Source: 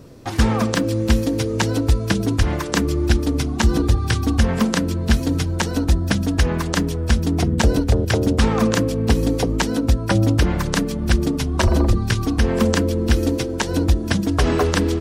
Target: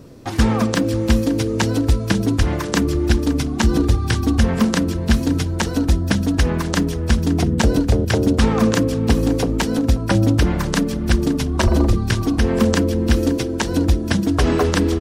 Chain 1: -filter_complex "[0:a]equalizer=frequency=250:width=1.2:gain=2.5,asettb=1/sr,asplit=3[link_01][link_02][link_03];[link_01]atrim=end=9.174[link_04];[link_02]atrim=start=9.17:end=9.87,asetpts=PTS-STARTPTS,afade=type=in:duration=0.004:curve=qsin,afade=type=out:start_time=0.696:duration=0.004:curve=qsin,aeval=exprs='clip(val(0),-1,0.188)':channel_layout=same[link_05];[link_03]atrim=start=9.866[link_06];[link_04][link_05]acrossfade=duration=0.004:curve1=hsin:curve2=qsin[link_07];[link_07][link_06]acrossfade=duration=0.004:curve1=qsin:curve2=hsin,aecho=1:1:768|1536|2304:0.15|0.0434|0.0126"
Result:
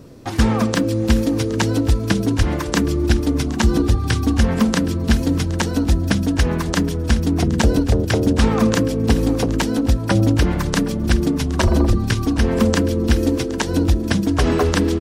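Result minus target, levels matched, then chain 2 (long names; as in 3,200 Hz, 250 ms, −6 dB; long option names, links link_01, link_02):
echo 233 ms late
-filter_complex "[0:a]equalizer=frequency=250:width=1.2:gain=2.5,asettb=1/sr,asplit=3[link_01][link_02][link_03];[link_01]atrim=end=9.174[link_04];[link_02]atrim=start=9.17:end=9.87,asetpts=PTS-STARTPTS,afade=type=in:duration=0.004:curve=qsin,afade=type=out:start_time=0.696:duration=0.004:curve=qsin,aeval=exprs='clip(val(0),-1,0.188)':channel_layout=same[link_05];[link_03]atrim=start=9.866[link_06];[link_04][link_05]acrossfade=duration=0.004:curve1=hsin:curve2=qsin[link_07];[link_07][link_06]acrossfade=duration=0.004:curve1=qsin:curve2=hsin,aecho=1:1:535|1070|1605:0.15|0.0434|0.0126"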